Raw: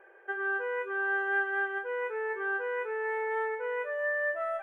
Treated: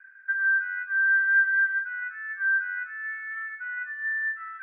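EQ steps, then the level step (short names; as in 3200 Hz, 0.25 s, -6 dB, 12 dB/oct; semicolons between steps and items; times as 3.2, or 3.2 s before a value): HPF 110 Hz 12 dB/oct; inverse Chebyshev band-stop 180–840 Hz, stop band 50 dB; synth low-pass 1500 Hz, resonance Q 9.1; 0.0 dB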